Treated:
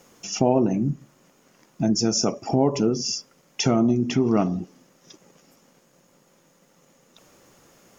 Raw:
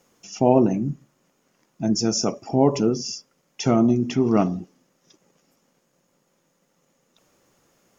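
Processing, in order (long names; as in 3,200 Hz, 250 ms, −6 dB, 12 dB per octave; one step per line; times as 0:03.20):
downward compressor 2 to 1, threshold −32 dBFS, peak gain reduction 12 dB
level +8 dB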